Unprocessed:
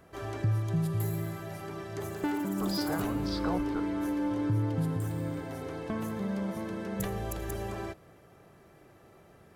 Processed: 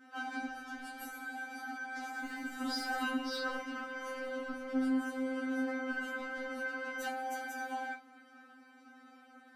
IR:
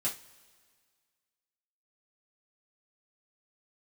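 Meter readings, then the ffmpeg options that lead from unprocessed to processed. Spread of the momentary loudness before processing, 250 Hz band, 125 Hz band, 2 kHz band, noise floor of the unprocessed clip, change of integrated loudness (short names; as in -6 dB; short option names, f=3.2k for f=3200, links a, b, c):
9 LU, -6.0 dB, under -35 dB, +7.0 dB, -58 dBFS, -5.0 dB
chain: -filter_complex "[0:a]highpass=150,lowpass=3.6k,crystalizer=i=1.5:c=0,asplit=2[a][b];[b]aeval=exprs='0.0376*(abs(mod(val(0)/0.0376+3,4)-2)-1)':c=same,volume=-4.5dB[c];[a][c]amix=inputs=2:normalize=0[d];[1:a]atrim=start_sample=2205,atrim=end_sample=3528[e];[d][e]afir=irnorm=-1:irlink=0,afftfilt=real='re*3.46*eq(mod(b,12),0)':imag='im*3.46*eq(mod(b,12),0)':win_size=2048:overlap=0.75,volume=-3dB"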